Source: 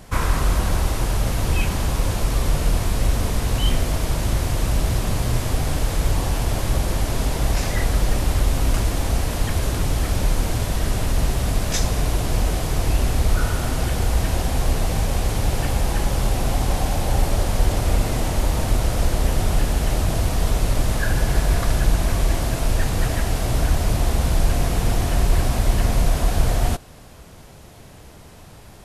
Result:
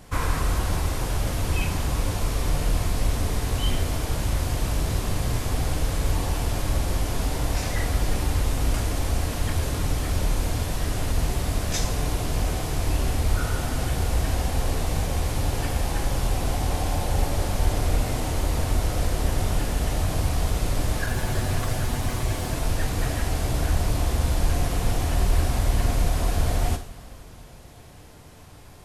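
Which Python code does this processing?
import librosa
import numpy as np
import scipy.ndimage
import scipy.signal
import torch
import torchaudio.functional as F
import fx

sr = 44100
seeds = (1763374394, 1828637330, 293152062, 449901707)

y = fx.lower_of_two(x, sr, delay_ms=8.1, at=(21.06, 22.5))
y = fx.rev_double_slope(y, sr, seeds[0], early_s=0.52, late_s=3.9, knee_db=-18, drr_db=5.5)
y = F.gain(torch.from_numpy(y), -4.5).numpy()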